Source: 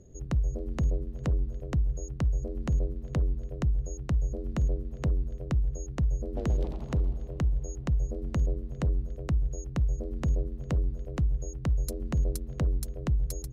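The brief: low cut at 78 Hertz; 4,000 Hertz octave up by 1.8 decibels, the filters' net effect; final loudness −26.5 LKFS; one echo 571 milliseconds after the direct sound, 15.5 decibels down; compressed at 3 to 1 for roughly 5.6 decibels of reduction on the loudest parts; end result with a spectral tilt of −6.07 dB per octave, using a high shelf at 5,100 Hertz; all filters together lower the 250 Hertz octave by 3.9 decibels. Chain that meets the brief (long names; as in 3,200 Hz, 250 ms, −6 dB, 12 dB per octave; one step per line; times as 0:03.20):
high-pass filter 78 Hz
parametric band 250 Hz −6 dB
parametric band 4,000 Hz +5.5 dB
high-shelf EQ 5,100 Hz −6.5 dB
downward compressor 3 to 1, threshold −34 dBFS
single-tap delay 571 ms −15.5 dB
level +13.5 dB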